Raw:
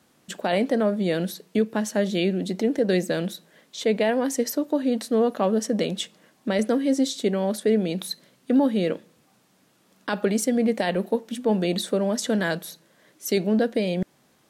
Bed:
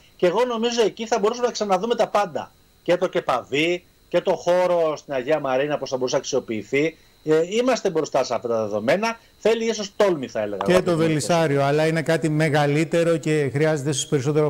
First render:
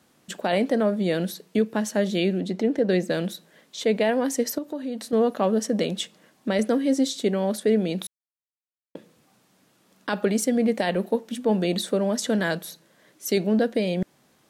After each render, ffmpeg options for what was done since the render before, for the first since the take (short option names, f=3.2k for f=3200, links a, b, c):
-filter_complex "[0:a]asettb=1/sr,asplit=3[a][b][c];[a]atrim=end=2.404[d];[b]atrim=start=2.4:end=3.1,asetpts=PTS-STARTPTS,afade=t=in:d=0.004:c=qsin,afade=t=out:st=0.696:d=0.004:c=qsin,lowpass=f=3.8k:p=1[e];[c]atrim=start=3.096[f];[d][e]acrossfade=d=0.004:c1=hsin:c2=qsin[g];[g][f]acrossfade=d=0.004:c1=qsin:c2=hsin,asettb=1/sr,asplit=3[h][i][j];[h]atrim=end=4.584[k];[i]atrim=start=4.58:end=5.13,asetpts=PTS-STARTPTS,afade=t=in:d=0.004:c=qsin,afade=t=out:st=0.546:d=0.004:c=qsin,acompressor=threshold=-33dB:ratio=2:attack=3.2:release=140:knee=1:detection=peak[l];[j]atrim=start=5.126[m];[k][l]acrossfade=d=0.004:c1=hsin:c2=qsin[n];[n][m]acrossfade=d=0.004:c1=qsin:c2=hsin,asplit=3[o][p][q];[o]atrim=end=8.07,asetpts=PTS-STARTPTS,afade=t=out:st=8.066:d=0.004:c=hsin[r];[p]atrim=start=8.07:end=8.95,asetpts=PTS-STARTPTS,volume=0[s];[q]atrim=start=8.95,asetpts=PTS-STARTPTS,afade=t=in:d=0.004:c=hsin[t];[r][s][t]concat=n=3:v=0:a=1"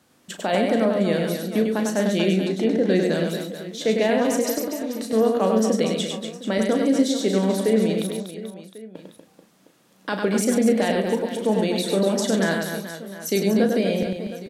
-filter_complex "[0:a]asplit=2[a][b];[b]adelay=36,volume=-9dB[c];[a][c]amix=inputs=2:normalize=0,aecho=1:1:100|240|436|710.4|1095:0.631|0.398|0.251|0.158|0.1"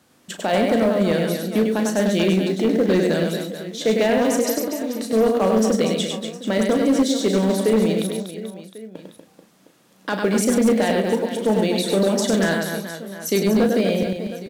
-filter_complex "[0:a]asplit=2[a][b];[b]acrusher=bits=4:mode=log:mix=0:aa=0.000001,volume=-10dB[c];[a][c]amix=inputs=2:normalize=0,asoftclip=type=hard:threshold=-11.5dB"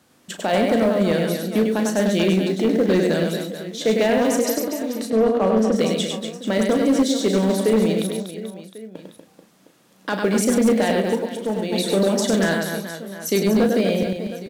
-filter_complex "[0:a]asettb=1/sr,asplit=3[a][b][c];[a]atrim=end=5.104[d];[b]atrim=start=5.1:end=5.76,asetpts=PTS-STARTPTS,afade=t=in:d=0.004:c=qsin,afade=t=out:st=0.656:d=0.004:c=qsin,lowpass=f=2.3k:p=1[e];[c]atrim=start=5.756[f];[d][e]acrossfade=d=0.004:c1=hsin:c2=qsin[g];[g][f]acrossfade=d=0.004:c1=qsin:c2=hsin,asplit=2[h][i];[h]atrim=end=11.72,asetpts=PTS-STARTPTS,afade=t=out:st=11.06:d=0.66:c=qua:silence=0.501187[j];[i]atrim=start=11.72,asetpts=PTS-STARTPTS,afade=t=in:d=0.004:c=hsin:silence=0.501187[k];[j][k]concat=n=2:v=0:a=1"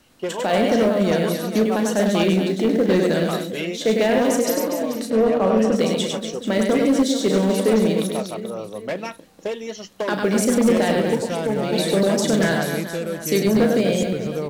-filter_complex "[1:a]volume=-8.5dB[a];[0:a][a]amix=inputs=2:normalize=0"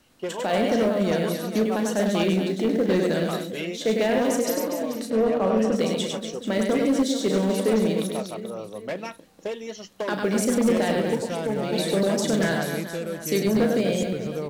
-af "volume=-4dB"